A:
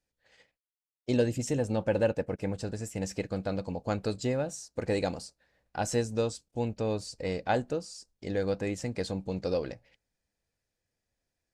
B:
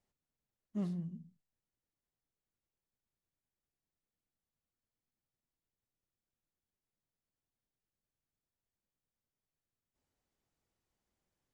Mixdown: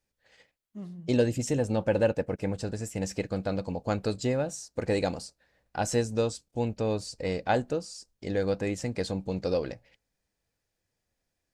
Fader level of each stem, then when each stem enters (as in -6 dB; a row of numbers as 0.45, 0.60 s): +2.0, -4.0 dB; 0.00, 0.00 s